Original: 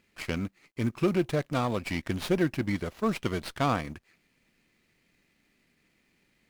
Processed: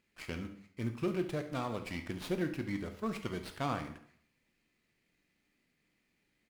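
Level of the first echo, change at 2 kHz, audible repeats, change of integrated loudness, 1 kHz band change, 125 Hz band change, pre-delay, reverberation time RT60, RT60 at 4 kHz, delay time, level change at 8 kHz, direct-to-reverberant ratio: −14.5 dB, −8.0 dB, 1, −8.0 dB, −8.0 dB, −8.5 dB, 5 ms, 0.60 s, 0.55 s, 70 ms, −8.0 dB, 6.0 dB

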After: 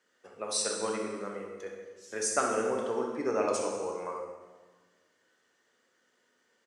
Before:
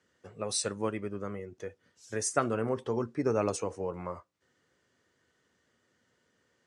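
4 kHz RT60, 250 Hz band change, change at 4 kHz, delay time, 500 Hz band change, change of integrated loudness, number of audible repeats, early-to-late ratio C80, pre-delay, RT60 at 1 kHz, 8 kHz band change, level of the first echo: 1.2 s, −2.5 dB, +2.5 dB, 65 ms, +1.0 dB, +0.5 dB, 1, 5.0 dB, 18 ms, 1.4 s, +2.5 dB, −9.5 dB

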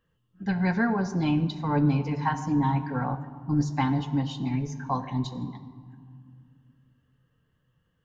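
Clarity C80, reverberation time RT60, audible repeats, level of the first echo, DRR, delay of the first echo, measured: 13.0 dB, 2.0 s, no echo audible, no echo audible, 5.5 dB, no echo audible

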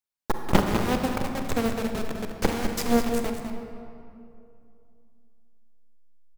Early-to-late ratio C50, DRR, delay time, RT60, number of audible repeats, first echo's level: 3.5 dB, 3.0 dB, 203 ms, 2.6 s, 1, −9.0 dB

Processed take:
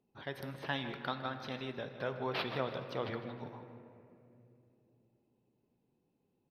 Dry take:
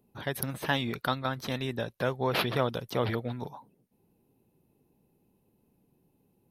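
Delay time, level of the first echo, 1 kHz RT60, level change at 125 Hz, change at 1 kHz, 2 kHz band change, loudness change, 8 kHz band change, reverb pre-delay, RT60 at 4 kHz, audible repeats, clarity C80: 156 ms, −13.5 dB, 2.2 s, −10.5 dB, −7.5 dB, −7.0 dB, −8.0 dB, below −20 dB, 3 ms, 1.4 s, 3, 8.5 dB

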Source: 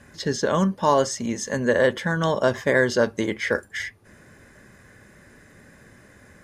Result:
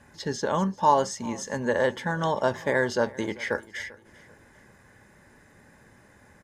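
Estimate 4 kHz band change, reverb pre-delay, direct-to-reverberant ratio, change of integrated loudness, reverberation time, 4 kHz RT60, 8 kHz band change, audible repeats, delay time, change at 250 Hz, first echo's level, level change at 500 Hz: −5.5 dB, no reverb audible, no reverb audible, −4.0 dB, no reverb audible, no reverb audible, −5.5 dB, 2, 392 ms, −5.5 dB, −21.0 dB, −5.0 dB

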